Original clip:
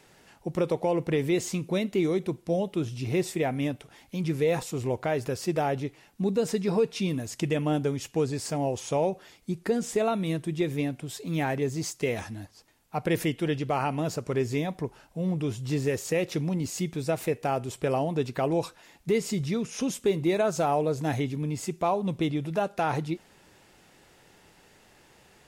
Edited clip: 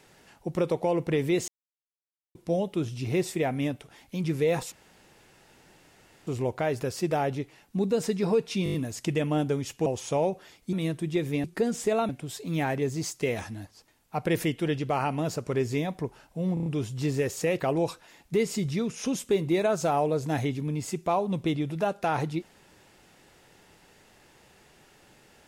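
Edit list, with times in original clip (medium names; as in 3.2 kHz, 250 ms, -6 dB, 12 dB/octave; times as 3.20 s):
1.48–2.35 s: mute
4.72 s: insert room tone 1.55 s
7.09 s: stutter 0.02 s, 6 plays
8.21–8.66 s: delete
9.53–10.18 s: move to 10.89 s
15.34 s: stutter 0.03 s, 5 plays
16.28–18.35 s: delete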